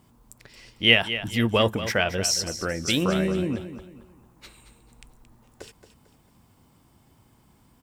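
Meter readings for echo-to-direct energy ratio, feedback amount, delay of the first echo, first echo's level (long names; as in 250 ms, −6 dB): −11.5 dB, 36%, 224 ms, −12.0 dB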